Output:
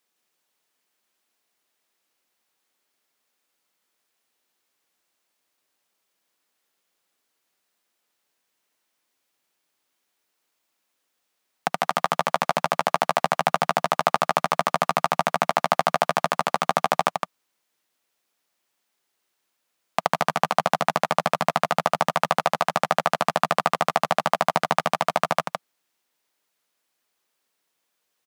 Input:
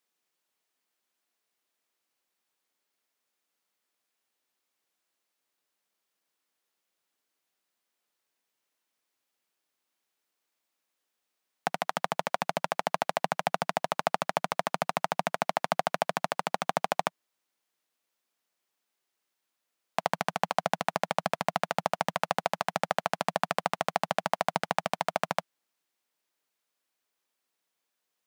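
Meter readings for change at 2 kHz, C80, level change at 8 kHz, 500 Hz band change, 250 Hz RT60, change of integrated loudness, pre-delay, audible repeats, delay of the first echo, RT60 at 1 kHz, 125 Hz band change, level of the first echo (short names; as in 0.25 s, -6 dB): +7.0 dB, none, +6.5 dB, +7.0 dB, none, +7.5 dB, none, 1, 0.163 s, none, +7.0 dB, -5.0 dB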